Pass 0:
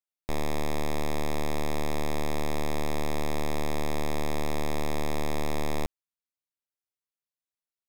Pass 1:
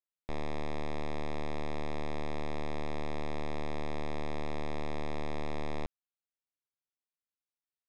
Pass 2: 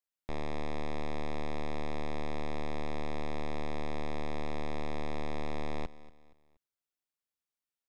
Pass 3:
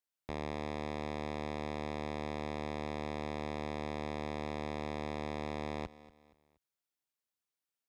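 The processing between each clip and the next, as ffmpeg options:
-af "lowpass=4100,volume=0.473"
-af "aecho=1:1:236|472|708:0.126|0.0466|0.0172"
-af "highpass=52"

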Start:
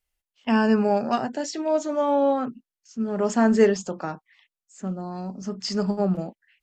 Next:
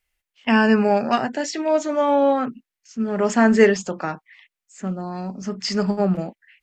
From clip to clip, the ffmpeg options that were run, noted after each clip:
-af "equalizer=f=2100:w=1.4:g=8,volume=1.41"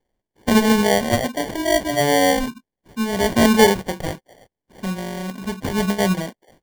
-af "acrusher=samples=34:mix=1:aa=0.000001,volume=1.12"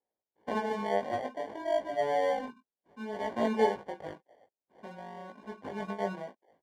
-af "bandpass=f=730:t=q:w=0.86:csg=0,flanger=delay=18:depth=2.2:speed=0.58,volume=0.422"

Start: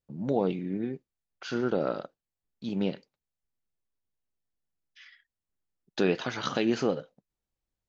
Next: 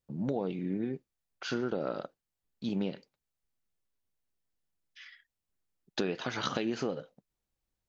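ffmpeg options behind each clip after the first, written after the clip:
-af "acompressor=threshold=0.0316:ratio=6,volume=1.19"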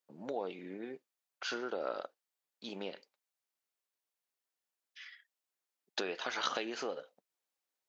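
-af "highpass=520"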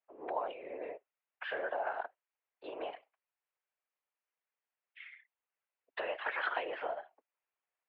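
-af "highpass=f=190:t=q:w=0.5412,highpass=f=190:t=q:w=1.307,lowpass=f=2600:t=q:w=0.5176,lowpass=f=2600:t=q:w=0.7071,lowpass=f=2600:t=q:w=1.932,afreqshift=170,afftfilt=real='hypot(re,im)*cos(2*PI*random(0))':imag='hypot(re,im)*sin(2*PI*random(1))':win_size=512:overlap=0.75,volume=2.37"

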